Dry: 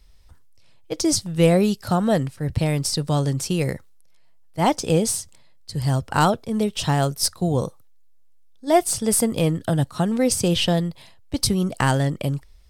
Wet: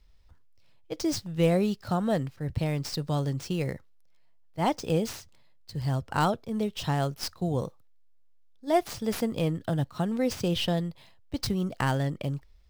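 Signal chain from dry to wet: median filter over 5 samples; gain -7 dB

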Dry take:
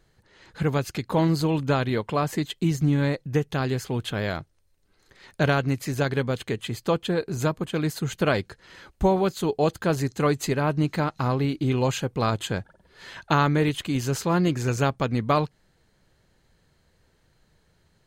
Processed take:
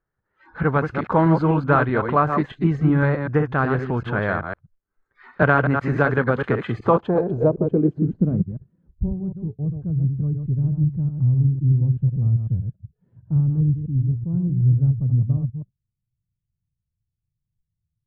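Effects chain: reverse delay 0.126 s, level -6 dB; spectral noise reduction 22 dB; low-pass sweep 1400 Hz -> 120 Hz, 6.72–8.74; 5.42–7.07 three-band squash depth 40%; gain +3 dB

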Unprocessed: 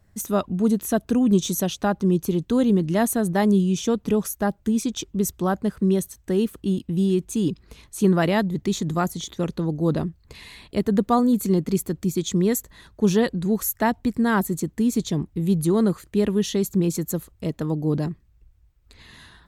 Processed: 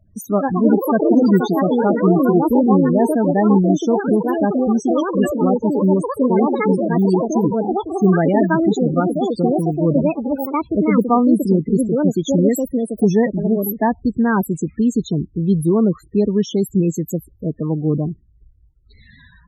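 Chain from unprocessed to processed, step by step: echoes that change speed 0.187 s, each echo +5 st, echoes 3; loudest bins only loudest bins 16; gain +4.5 dB

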